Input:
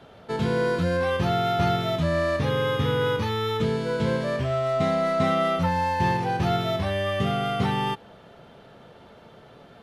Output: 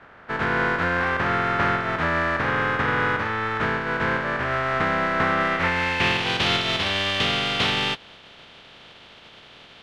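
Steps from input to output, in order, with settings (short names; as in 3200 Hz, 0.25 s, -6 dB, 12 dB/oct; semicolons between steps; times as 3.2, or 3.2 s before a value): spectral contrast lowered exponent 0.34; low-pass sweep 1600 Hz -> 3300 Hz, 5.37–6.34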